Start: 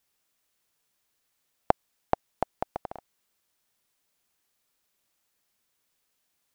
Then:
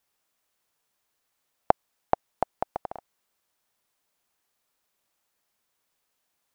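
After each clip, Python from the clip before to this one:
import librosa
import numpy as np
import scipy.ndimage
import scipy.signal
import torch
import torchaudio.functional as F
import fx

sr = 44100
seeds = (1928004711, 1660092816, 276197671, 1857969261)

y = fx.peak_eq(x, sr, hz=850.0, db=5.0, octaves=1.9)
y = y * librosa.db_to_amplitude(-2.0)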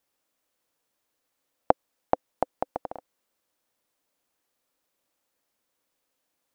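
y = fx.small_body(x, sr, hz=(290.0, 510.0), ring_ms=30, db=8)
y = y * librosa.db_to_amplitude(-2.0)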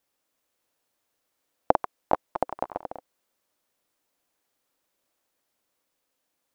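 y = fx.echo_pitch(x, sr, ms=319, semitones=3, count=2, db_per_echo=-6.0)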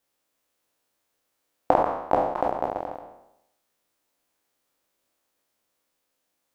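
y = fx.spec_trails(x, sr, decay_s=0.83)
y = y * librosa.db_to_amplitude(-1.0)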